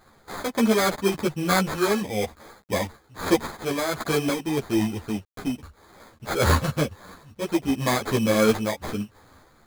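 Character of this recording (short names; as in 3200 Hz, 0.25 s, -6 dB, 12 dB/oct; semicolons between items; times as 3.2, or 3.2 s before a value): a quantiser's noise floor 10-bit, dither none; random-step tremolo; aliases and images of a low sample rate 2800 Hz, jitter 0%; a shimmering, thickened sound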